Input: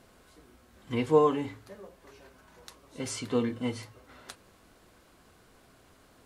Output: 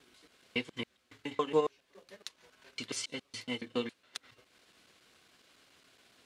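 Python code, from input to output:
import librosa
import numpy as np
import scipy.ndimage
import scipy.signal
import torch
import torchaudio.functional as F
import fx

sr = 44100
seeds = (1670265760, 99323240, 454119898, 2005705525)

y = fx.block_reorder(x, sr, ms=139.0, group=4)
y = fx.transient(y, sr, attack_db=3, sustain_db=-9)
y = fx.weighting(y, sr, curve='D')
y = F.gain(torch.from_numpy(y), -7.5).numpy()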